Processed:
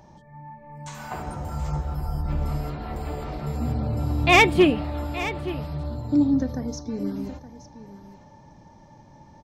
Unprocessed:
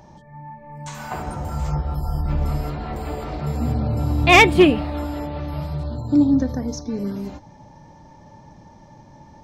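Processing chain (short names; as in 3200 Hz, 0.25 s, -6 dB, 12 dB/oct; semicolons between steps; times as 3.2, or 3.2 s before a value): echo 0.871 s -14.5 dB; gain -4 dB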